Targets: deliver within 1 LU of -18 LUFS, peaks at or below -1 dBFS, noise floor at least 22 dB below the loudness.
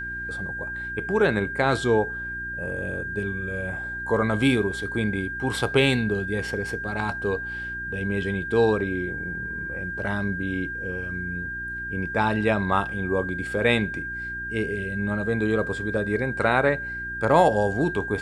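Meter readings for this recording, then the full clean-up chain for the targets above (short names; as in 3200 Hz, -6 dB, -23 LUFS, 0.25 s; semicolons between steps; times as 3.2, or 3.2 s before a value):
hum 60 Hz; harmonics up to 360 Hz; hum level -39 dBFS; steady tone 1600 Hz; tone level -30 dBFS; loudness -25.5 LUFS; peak -5.5 dBFS; loudness target -18.0 LUFS
-> de-hum 60 Hz, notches 6; notch 1600 Hz, Q 30; gain +7.5 dB; limiter -1 dBFS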